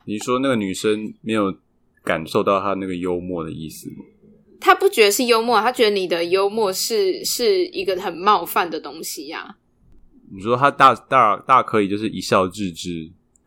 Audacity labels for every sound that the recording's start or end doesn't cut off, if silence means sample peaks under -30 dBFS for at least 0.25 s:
2.070000	4.000000	sound
4.620000	9.500000	sound
10.330000	13.050000	sound